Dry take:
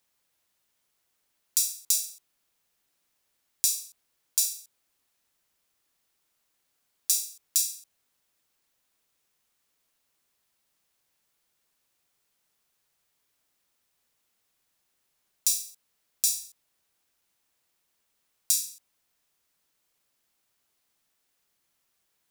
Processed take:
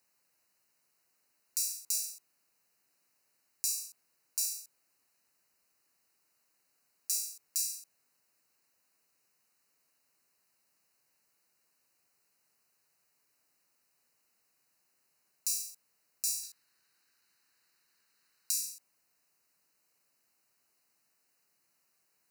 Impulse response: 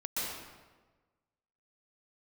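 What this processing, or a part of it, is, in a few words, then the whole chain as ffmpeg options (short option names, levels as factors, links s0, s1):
PA system with an anti-feedback notch: -filter_complex "[0:a]highpass=110,asuperstop=centerf=3400:order=8:qfactor=3.8,alimiter=limit=0.266:level=0:latency=1:release=187,asettb=1/sr,asplit=3[s0][s1][s2];[s0]atrim=end=16.434[s3];[s1]atrim=start=16.43:end=18.51,asetpts=PTS-STARTPTS,afade=t=in:d=0.004:c=qsin,afade=t=out:st=2.076:d=0.004:c=qsin,equalizer=f=630:t=o:w=0.67:g=-4,equalizer=f=1600:t=o:w=0.67:g=8,equalizer=f=4000:t=o:w=0.67:g=8[s4];[s2]atrim=start=18.506[s5];[s3][s4]acrossfade=d=0.004:c1=hsin:c2=qsin[s6];[s6][s5]acrossfade=d=0.004:c1=qsin:c2=hsin"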